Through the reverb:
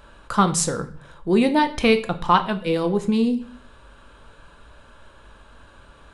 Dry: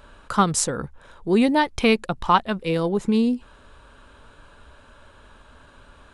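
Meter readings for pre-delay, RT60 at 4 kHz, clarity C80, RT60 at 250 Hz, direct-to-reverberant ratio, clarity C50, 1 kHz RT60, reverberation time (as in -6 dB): 6 ms, 0.45 s, 17.5 dB, 0.75 s, 7.5 dB, 14.5 dB, 0.45 s, 0.45 s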